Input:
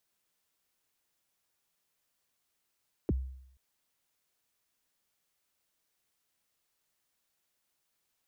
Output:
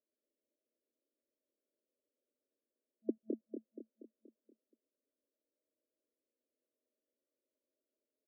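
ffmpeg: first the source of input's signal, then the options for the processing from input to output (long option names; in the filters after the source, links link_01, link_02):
-f lavfi -i "aevalsrc='0.0668*pow(10,-3*t/0.72)*sin(2*PI*(460*0.031/log(65/460)*(exp(log(65/460)*min(t,0.031)/0.031)-1)+65*max(t-0.031,0)))':duration=0.48:sample_rate=44100"
-filter_complex "[0:a]asplit=2[link_01][link_02];[link_02]aecho=0:1:238|476|714|952|1190|1428:0.501|0.256|0.13|0.0665|0.0339|0.0173[link_03];[link_01][link_03]amix=inputs=2:normalize=0,afftfilt=real='re*between(b*sr/4096,220,650)':imag='im*between(b*sr/4096,220,650)':win_size=4096:overlap=0.75,asplit=2[link_04][link_05];[link_05]aecho=0:1:211:0.631[link_06];[link_04][link_06]amix=inputs=2:normalize=0"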